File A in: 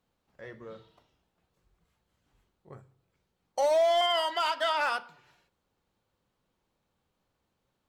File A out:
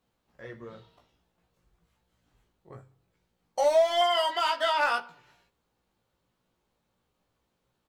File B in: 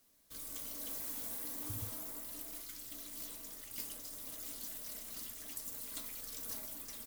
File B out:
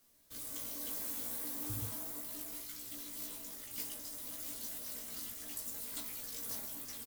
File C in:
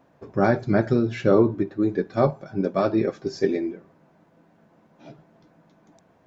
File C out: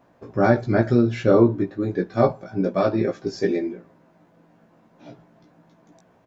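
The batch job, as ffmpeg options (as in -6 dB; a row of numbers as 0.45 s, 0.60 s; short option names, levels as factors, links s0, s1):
-filter_complex "[0:a]asplit=2[s0][s1];[s1]adelay=17,volume=0.708[s2];[s0][s2]amix=inputs=2:normalize=0"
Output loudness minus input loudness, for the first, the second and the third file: +2.0 LU, +2.0 LU, +2.0 LU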